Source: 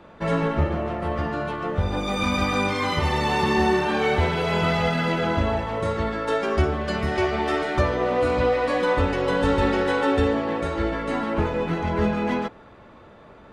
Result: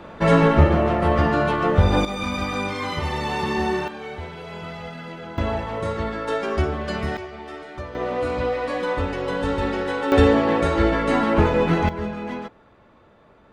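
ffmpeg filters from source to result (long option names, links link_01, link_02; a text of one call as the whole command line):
ffmpeg -i in.wav -af "asetnsamples=nb_out_samples=441:pad=0,asendcmd='2.05 volume volume -3dB;3.88 volume volume -12.5dB;5.38 volume volume -1dB;7.17 volume volume -12.5dB;7.95 volume volume -3dB;10.12 volume volume 6dB;11.89 volume volume -6dB',volume=7.5dB" out.wav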